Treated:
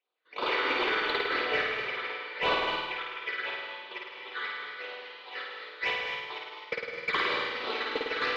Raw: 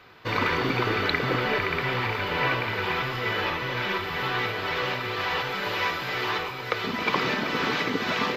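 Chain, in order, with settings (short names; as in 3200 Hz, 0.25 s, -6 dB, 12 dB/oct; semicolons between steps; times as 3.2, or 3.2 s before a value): gate -23 dBFS, range -32 dB; HPF 410 Hz 24 dB/oct; high shelf 2900 Hz +11.5 dB; AGC gain up to 12.5 dB; phaser stages 8, 2.9 Hz, lowest notch 710–2100 Hz; soft clip -20.5 dBFS, distortion -7 dB; air absorption 300 m; flutter echo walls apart 9 m, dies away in 1.1 s; non-linear reverb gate 0.28 s rising, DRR 5 dB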